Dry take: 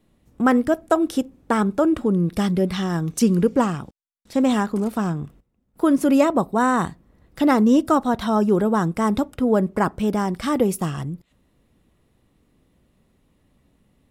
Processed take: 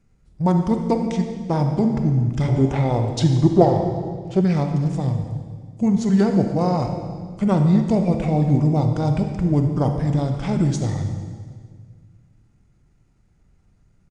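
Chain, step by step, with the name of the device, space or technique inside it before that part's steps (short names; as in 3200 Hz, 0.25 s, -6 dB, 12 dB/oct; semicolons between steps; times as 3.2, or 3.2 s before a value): monster voice (pitch shift -6 st; formant shift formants -2 st; low shelf 110 Hz +8 dB; reverb RT60 1.8 s, pre-delay 28 ms, DRR 4.5 dB); 2.48–4.41 band shelf 550 Hz +11 dB; gain -2.5 dB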